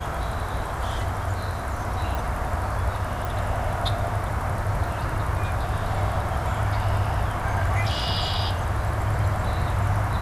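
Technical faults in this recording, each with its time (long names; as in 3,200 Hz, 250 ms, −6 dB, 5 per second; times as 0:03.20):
0:02.15: click
0:03.25: click
0:04.87: drop-out 2.4 ms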